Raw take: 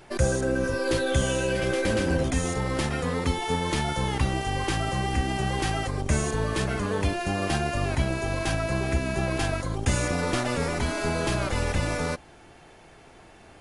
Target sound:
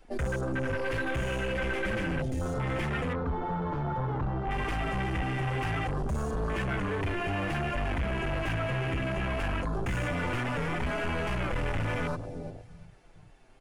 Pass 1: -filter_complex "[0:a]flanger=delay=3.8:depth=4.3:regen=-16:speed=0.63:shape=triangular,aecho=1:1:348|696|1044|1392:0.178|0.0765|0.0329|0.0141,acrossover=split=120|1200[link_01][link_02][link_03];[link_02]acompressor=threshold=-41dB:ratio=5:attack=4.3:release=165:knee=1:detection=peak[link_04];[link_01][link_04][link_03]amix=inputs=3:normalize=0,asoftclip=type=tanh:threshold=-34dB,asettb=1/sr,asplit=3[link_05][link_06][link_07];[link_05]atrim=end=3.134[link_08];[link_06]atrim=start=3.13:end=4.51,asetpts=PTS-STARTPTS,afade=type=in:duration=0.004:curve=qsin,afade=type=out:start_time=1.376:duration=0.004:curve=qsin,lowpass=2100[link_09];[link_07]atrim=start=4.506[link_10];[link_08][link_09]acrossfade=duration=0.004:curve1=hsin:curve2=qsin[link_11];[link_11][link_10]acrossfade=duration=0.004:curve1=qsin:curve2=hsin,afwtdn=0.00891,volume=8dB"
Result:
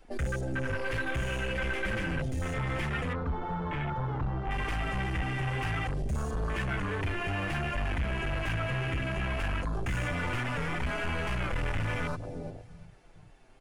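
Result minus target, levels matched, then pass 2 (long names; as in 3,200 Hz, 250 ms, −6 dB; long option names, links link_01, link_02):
downward compressor: peak gain reduction +5 dB
-filter_complex "[0:a]flanger=delay=3.8:depth=4.3:regen=-16:speed=0.63:shape=triangular,aecho=1:1:348|696|1044|1392:0.178|0.0765|0.0329|0.0141,acrossover=split=120|1200[link_01][link_02][link_03];[link_02]acompressor=threshold=-35dB:ratio=5:attack=4.3:release=165:knee=1:detection=peak[link_04];[link_01][link_04][link_03]amix=inputs=3:normalize=0,asoftclip=type=tanh:threshold=-34dB,asettb=1/sr,asplit=3[link_05][link_06][link_07];[link_05]atrim=end=3.134[link_08];[link_06]atrim=start=3.13:end=4.51,asetpts=PTS-STARTPTS,afade=type=in:duration=0.004:curve=qsin,afade=type=out:start_time=1.376:duration=0.004:curve=qsin,lowpass=2100[link_09];[link_07]atrim=start=4.506[link_10];[link_08][link_09]acrossfade=duration=0.004:curve1=hsin:curve2=qsin[link_11];[link_11][link_10]acrossfade=duration=0.004:curve1=qsin:curve2=hsin,afwtdn=0.00891,volume=8dB"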